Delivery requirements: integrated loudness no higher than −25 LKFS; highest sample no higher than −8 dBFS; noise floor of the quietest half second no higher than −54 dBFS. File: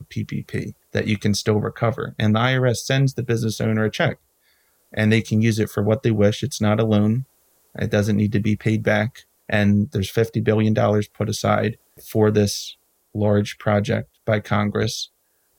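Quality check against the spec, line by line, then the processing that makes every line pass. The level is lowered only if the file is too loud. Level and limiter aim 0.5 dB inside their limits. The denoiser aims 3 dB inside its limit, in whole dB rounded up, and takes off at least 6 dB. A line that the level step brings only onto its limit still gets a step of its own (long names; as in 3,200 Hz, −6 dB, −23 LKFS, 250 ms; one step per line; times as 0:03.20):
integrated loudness −21.0 LKFS: out of spec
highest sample −5.0 dBFS: out of spec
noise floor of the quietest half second −65 dBFS: in spec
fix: level −4.5 dB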